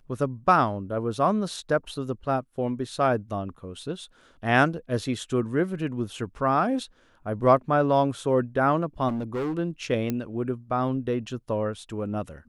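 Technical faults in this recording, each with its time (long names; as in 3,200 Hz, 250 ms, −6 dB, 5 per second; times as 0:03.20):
0:09.08–0:09.59: clipping −25.5 dBFS
0:10.10: click −14 dBFS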